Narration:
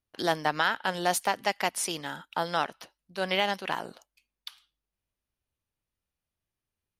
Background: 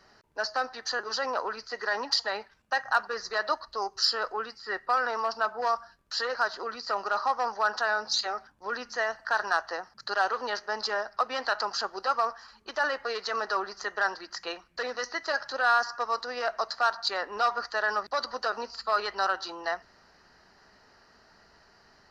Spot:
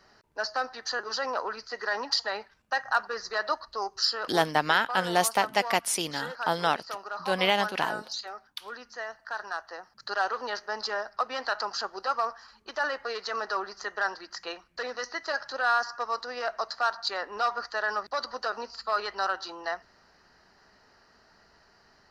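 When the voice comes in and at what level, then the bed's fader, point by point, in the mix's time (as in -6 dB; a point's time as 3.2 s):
4.10 s, +2.5 dB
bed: 4.03 s -0.5 dB
4.56 s -8 dB
9.68 s -8 dB
10.11 s -1.5 dB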